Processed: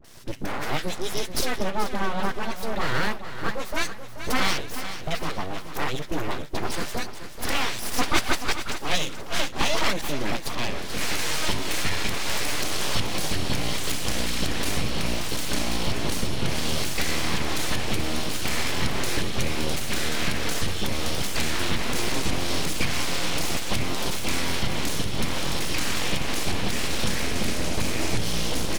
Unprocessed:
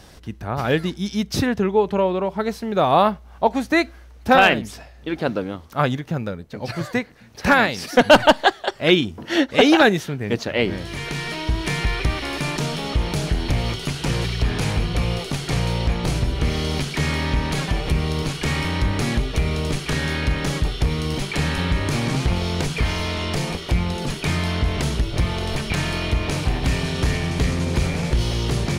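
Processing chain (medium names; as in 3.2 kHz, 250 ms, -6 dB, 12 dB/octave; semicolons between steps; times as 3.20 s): recorder AGC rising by 24 dB/s; treble shelf 3.8 kHz +8.5 dB; in parallel at 0 dB: peak limiter -10 dBFS, peak gain reduction 10.5 dB; on the sum: flange 1.7 Hz, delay 3.6 ms, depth 5.8 ms, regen -75%; phase dispersion highs, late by 45 ms, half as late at 720 Hz; full-wave rectifier; on a send: feedback delay 432 ms, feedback 43%, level -11 dB; on the sum: trim -6.5 dB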